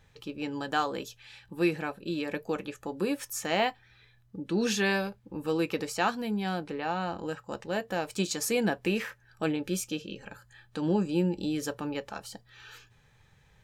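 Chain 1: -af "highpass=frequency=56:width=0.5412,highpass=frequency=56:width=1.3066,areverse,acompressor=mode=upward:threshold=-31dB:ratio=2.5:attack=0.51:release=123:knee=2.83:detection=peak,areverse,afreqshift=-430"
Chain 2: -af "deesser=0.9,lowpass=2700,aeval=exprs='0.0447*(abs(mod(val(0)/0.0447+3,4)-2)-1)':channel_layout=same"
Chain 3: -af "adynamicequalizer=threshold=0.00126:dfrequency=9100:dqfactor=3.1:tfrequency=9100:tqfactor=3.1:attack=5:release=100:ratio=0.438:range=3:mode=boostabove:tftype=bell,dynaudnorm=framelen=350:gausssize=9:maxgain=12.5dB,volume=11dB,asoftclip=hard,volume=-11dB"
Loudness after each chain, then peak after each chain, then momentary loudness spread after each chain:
−32.5, −35.5, −20.5 LKFS; −13.5, −27.0, −11.0 dBFS; 14, 12, 16 LU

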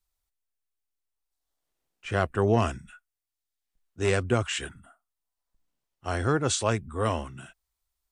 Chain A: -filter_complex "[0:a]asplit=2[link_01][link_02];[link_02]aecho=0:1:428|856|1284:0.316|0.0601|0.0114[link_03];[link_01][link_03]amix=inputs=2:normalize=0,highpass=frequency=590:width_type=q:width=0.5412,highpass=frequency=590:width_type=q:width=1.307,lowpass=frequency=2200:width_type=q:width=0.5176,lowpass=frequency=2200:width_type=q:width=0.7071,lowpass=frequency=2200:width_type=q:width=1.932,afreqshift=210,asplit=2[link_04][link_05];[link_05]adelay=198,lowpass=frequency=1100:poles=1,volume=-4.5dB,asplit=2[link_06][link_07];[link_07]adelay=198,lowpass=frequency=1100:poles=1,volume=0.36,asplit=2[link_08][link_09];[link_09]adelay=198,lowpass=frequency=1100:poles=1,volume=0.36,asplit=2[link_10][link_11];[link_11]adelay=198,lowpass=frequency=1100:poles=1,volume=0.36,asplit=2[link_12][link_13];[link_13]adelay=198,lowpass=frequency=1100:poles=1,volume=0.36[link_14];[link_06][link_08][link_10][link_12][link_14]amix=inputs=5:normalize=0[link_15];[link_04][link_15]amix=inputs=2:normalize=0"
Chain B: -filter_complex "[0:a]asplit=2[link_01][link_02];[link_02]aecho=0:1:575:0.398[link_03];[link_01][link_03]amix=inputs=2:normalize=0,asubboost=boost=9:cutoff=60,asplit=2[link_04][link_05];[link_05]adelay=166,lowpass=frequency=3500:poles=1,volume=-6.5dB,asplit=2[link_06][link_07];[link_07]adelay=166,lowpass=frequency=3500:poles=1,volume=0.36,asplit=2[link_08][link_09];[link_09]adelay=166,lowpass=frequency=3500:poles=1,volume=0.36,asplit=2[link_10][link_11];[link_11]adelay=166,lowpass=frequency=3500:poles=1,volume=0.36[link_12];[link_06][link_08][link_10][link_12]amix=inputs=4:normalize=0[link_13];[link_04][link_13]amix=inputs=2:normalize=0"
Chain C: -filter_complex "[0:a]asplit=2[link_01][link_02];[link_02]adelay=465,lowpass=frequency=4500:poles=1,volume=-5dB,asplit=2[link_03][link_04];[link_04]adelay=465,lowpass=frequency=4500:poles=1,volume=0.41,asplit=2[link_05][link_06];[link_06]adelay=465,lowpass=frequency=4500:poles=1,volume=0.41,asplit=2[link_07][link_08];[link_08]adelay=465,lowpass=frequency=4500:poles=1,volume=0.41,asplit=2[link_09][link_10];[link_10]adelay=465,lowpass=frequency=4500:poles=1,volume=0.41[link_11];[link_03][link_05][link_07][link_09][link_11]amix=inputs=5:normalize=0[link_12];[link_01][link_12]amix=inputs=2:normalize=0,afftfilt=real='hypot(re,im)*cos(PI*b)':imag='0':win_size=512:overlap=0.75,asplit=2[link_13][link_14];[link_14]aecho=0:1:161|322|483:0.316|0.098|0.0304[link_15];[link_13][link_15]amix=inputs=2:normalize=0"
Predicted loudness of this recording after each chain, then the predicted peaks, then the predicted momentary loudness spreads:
−33.0, −27.5, −32.0 LKFS; −15.0, −9.5, −11.5 dBFS; 18, 15, 16 LU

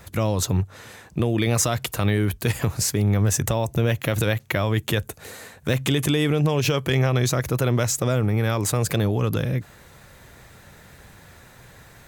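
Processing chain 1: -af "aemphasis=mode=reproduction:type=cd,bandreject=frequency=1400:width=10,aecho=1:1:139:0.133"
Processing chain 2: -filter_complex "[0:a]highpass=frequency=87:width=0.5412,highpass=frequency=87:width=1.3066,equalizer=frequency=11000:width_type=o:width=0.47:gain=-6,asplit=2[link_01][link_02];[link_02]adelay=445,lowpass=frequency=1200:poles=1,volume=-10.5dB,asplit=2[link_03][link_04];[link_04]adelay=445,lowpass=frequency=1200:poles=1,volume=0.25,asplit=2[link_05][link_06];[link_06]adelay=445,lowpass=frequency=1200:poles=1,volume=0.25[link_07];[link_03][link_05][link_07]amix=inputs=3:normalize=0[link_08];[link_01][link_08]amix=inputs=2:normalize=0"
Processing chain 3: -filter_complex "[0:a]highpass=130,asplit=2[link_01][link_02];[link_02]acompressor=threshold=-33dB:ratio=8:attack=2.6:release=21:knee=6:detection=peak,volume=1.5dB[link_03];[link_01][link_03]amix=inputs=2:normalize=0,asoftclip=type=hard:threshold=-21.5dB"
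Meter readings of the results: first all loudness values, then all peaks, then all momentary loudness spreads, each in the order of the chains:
−23.0, −23.0, −26.0 LKFS; −6.5, −7.5, −21.5 dBFS; 7, 11, 17 LU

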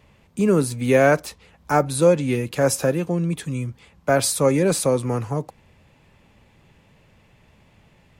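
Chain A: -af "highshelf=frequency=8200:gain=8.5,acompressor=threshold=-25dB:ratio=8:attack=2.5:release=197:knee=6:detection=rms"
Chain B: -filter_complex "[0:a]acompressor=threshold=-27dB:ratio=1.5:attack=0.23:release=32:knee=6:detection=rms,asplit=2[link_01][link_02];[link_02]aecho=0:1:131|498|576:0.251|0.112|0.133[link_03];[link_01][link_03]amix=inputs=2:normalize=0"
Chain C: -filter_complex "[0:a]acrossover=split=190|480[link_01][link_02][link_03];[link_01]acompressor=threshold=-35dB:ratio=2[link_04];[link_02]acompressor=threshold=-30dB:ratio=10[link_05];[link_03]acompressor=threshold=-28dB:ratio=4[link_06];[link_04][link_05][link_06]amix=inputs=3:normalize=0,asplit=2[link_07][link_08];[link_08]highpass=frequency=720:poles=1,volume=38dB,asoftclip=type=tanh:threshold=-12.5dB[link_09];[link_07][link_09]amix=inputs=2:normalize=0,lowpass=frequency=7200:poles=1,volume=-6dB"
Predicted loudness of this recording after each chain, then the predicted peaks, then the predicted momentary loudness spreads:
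−31.5, −25.5, −20.5 LKFS; −17.5, −11.0, −12.5 dBFS; 7, 11, 11 LU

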